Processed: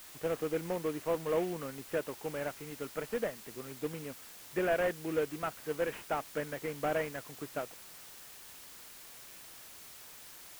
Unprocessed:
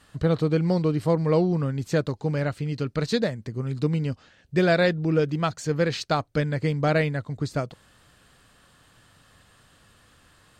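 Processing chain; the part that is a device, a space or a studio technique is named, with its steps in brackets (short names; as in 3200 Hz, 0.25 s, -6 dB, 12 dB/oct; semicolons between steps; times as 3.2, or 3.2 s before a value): army field radio (BPF 360–3000 Hz; CVSD 16 kbps; white noise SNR 14 dB); gain -6.5 dB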